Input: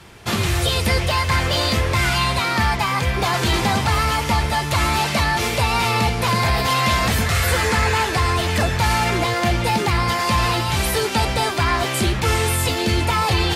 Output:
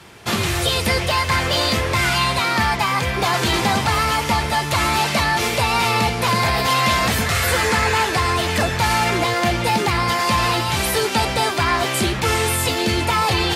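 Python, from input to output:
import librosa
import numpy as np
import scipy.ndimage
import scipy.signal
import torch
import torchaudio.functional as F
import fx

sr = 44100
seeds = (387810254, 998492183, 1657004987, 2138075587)

y = fx.highpass(x, sr, hz=130.0, slope=6)
y = y * librosa.db_to_amplitude(1.5)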